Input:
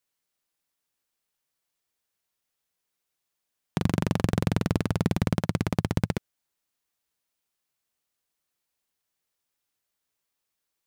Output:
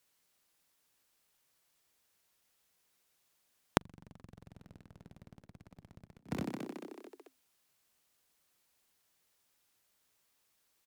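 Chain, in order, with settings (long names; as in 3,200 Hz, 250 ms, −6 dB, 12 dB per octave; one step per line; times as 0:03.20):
harmonic generator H 8 −21 dB, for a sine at −8.5 dBFS
echo with shifted repeats 219 ms, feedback 55%, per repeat +50 Hz, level −16 dB
gate with flip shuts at −19 dBFS, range −38 dB
level +6.5 dB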